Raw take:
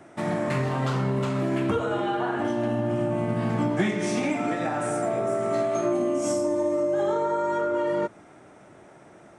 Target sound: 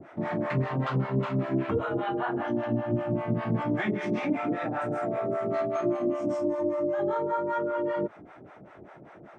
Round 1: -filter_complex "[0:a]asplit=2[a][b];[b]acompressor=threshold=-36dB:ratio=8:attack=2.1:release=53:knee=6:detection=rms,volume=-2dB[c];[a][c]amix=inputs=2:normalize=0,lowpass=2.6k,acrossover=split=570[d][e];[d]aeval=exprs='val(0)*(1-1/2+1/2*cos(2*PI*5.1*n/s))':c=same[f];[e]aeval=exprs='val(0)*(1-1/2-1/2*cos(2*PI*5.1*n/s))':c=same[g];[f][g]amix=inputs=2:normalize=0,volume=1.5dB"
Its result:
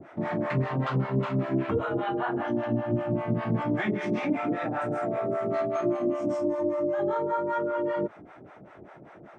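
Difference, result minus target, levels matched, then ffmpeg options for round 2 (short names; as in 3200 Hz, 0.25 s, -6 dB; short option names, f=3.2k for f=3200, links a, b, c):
compressor: peak gain reduction -5.5 dB
-filter_complex "[0:a]asplit=2[a][b];[b]acompressor=threshold=-42.5dB:ratio=8:attack=2.1:release=53:knee=6:detection=rms,volume=-2dB[c];[a][c]amix=inputs=2:normalize=0,lowpass=2.6k,acrossover=split=570[d][e];[d]aeval=exprs='val(0)*(1-1/2+1/2*cos(2*PI*5.1*n/s))':c=same[f];[e]aeval=exprs='val(0)*(1-1/2-1/2*cos(2*PI*5.1*n/s))':c=same[g];[f][g]amix=inputs=2:normalize=0,volume=1.5dB"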